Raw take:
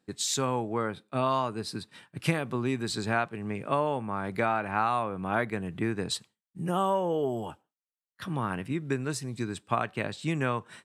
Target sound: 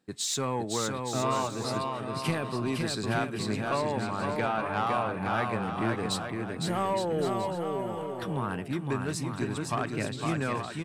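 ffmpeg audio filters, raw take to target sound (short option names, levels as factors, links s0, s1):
-af "asoftclip=type=tanh:threshold=0.0891,aecho=1:1:510|867|1117|1292|1414:0.631|0.398|0.251|0.158|0.1"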